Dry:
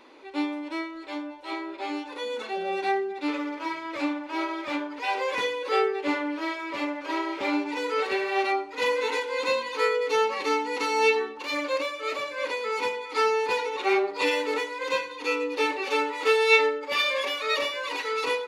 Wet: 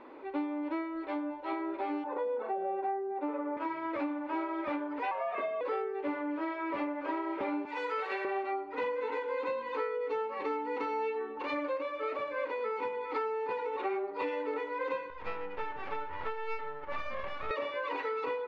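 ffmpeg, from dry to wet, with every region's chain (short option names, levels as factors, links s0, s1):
-filter_complex "[0:a]asettb=1/sr,asplit=3[s0][s1][s2];[s0]atrim=end=2.044[s3];[s1]atrim=start=2.04:end=3.57,asetpts=PTS-STARTPTS,afade=t=in:d=0.004:c=qsin,afade=t=out:st=1.526:d=0.004:c=qsin,acontrast=34,bandpass=f=650:t=q:w=1.2[s4];[s2]atrim=start=3.566[s5];[s3][s4]acrossfade=d=0.004:c1=hsin:c2=qsin[s6];[s6][s5]acrossfade=d=0.004:c1=qsin:c2=hsin,asettb=1/sr,asplit=3[s7][s8][s9];[s7]atrim=end=5.114[s10];[s8]atrim=start=5.11:end=5.61,asetpts=PTS-STARTPTS,afade=t=in:d=0.004:c=qsin,afade=t=out:st=0.496:d=0.004:c=qsin,bass=f=250:g=10,treble=f=4000:g=-14,afreqshift=150[s11];[s9]atrim=start=5.606[s12];[s10][s11]acrossfade=d=0.004:c1=hsin:c2=qsin[s13];[s13][s12]acrossfade=d=0.004:c1=qsin:c2=hsin,asettb=1/sr,asplit=3[s14][s15][s16];[s14]atrim=end=7.654[s17];[s15]atrim=start=7.65:end=8.25,asetpts=PTS-STARTPTS,afade=t=in:d=0.004:c=qsin,afade=t=out:st=0.596:d=0.004:c=qsin,highpass=f=790:p=1,aemphasis=mode=production:type=bsi[s18];[s16]atrim=start=8.246[s19];[s17][s18]acrossfade=d=0.004:c1=hsin:c2=qsin[s20];[s20][s19]acrossfade=d=0.004:c1=qsin:c2=hsin,asettb=1/sr,asplit=3[s21][s22][s23];[s21]atrim=end=15.104[s24];[s22]atrim=start=15.1:end=17.51,asetpts=PTS-STARTPTS,afade=t=in:d=0.004:c=qsin,afade=t=out:st=2.406:d=0.004:c=qsin,highpass=700,lowpass=2500,aeval=exprs='max(val(0),0)':c=same[s25];[s23]atrim=start=17.506[s26];[s24][s25]acrossfade=d=0.004:c1=hsin:c2=qsin[s27];[s27][s26]acrossfade=d=0.004:c1=qsin:c2=hsin,lowpass=1500,acompressor=threshold=0.02:ratio=10,volume=1.41"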